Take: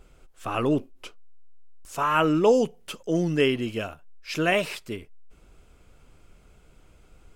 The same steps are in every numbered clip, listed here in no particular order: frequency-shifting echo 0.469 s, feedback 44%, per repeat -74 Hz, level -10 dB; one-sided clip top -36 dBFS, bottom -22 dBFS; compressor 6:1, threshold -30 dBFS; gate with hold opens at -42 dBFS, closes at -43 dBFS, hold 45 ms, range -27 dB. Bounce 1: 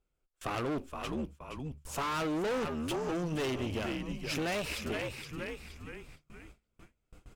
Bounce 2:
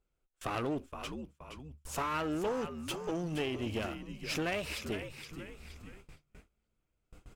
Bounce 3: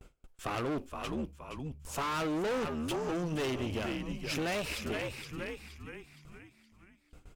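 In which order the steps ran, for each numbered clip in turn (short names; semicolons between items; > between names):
frequency-shifting echo > one-sided clip > gate with hold > compressor; compressor > frequency-shifting echo > one-sided clip > gate with hold; gate with hold > frequency-shifting echo > one-sided clip > compressor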